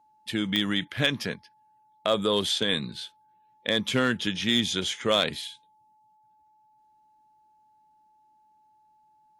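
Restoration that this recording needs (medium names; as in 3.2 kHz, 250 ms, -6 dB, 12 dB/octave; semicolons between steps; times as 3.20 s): clip repair -13 dBFS; de-click; band-stop 860 Hz, Q 30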